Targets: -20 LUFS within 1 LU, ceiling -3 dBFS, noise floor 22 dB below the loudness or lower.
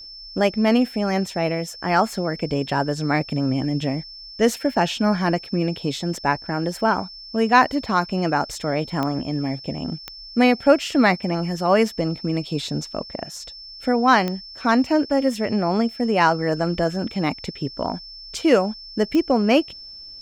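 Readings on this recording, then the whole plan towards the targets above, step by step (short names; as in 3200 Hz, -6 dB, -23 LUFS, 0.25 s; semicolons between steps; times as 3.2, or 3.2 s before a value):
clicks 4; steady tone 5300 Hz; tone level -37 dBFS; loudness -21.5 LUFS; peak -2.5 dBFS; loudness target -20.0 LUFS
-> de-click; notch 5300 Hz, Q 30; gain +1.5 dB; limiter -3 dBFS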